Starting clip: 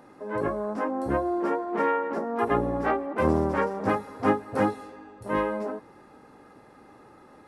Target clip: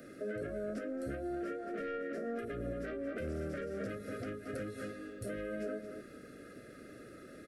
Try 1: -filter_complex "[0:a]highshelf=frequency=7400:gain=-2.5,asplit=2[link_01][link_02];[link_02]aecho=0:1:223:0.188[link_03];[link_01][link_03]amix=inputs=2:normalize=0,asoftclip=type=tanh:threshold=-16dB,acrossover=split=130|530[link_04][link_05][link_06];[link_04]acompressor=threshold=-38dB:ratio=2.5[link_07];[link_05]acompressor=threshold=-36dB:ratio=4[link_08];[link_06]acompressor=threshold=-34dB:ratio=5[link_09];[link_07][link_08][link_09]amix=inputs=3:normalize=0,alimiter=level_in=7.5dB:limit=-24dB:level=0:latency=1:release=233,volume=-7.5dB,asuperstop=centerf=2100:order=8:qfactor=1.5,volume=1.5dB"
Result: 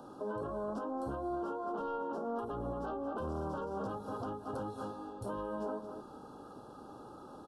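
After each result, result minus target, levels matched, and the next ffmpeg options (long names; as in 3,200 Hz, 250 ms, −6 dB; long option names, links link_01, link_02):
1,000 Hz band +9.0 dB; 8,000 Hz band −6.5 dB
-filter_complex "[0:a]highshelf=frequency=7400:gain=-2.5,asplit=2[link_01][link_02];[link_02]aecho=0:1:223:0.188[link_03];[link_01][link_03]amix=inputs=2:normalize=0,asoftclip=type=tanh:threshold=-16dB,acrossover=split=130|530[link_04][link_05][link_06];[link_04]acompressor=threshold=-38dB:ratio=2.5[link_07];[link_05]acompressor=threshold=-36dB:ratio=4[link_08];[link_06]acompressor=threshold=-34dB:ratio=5[link_09];[link_07][link_08][link_09]amix=inputs=3:normalize=0,alimiter=level_in=7.5dB:limit=-24dB:level=0:latency=1:release=233,volume=-7.5dB,asuperstop=centerf=930:order=8:qfactor=1.5,volume=1.5dB"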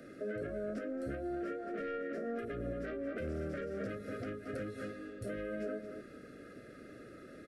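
8,000 Hz band −5.5 dB
-filter_complex "[0:a]highshelf=frequency=7400:gain=7,asplit=2[link_01][link_02];[link_02]aecho=0:1:223:0.188[link_03];[link_01][link_03]amix=inputs=2:normalize=0,asoftclip=type=tanh:threshold=-16dB,acrossover=split=130|530[link_04][link_05][link_06];[link_04]acompressor=threshold=-38dB:ratio=2.5[link_07];[link_05]acompressor=threshold=-36dB:ratio=4[link_08];[link_06]acompressor=threshold=-34dB:ratio=5[link_09];[link_07][link_08][link_09]amix=inputs=3:normalize=0,alimiter=level_in=7.5dB:limit=-24dB:level=0:latency=1:release=233,volume=-7.5dB,asuperstop=centerf=930:order=8:qfactor=1.5,volume=1.5dB"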